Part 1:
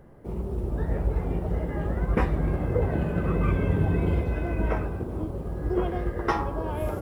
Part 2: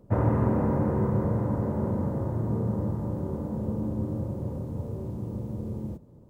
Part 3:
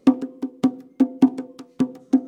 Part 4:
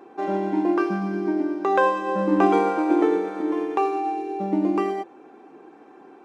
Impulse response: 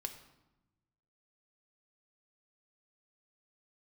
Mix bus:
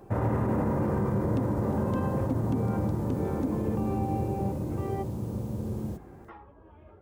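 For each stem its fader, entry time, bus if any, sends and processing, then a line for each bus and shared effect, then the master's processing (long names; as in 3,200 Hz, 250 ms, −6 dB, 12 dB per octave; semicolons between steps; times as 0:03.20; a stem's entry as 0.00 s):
−20.0 dB, 0.00 s, no send, low-pass filter 3,300 Hz 24 dB per octave; string-ensemble chorus
+0.5 dB, 0.00 s, no send, high-shelf EQ 2,200 Hz +9.5 dB
−13.5 dB, 1.30 s, no send, no processing
−9.0 dB, 0.00 s, no send, compressor whose output falls as the input rises −27 dBFS, ratio −1; high-shelf EQ 2,200 Hz −9.5 dB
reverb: not used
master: brickwall limiter −19 dBFS, peak gain reduction 8.5 dB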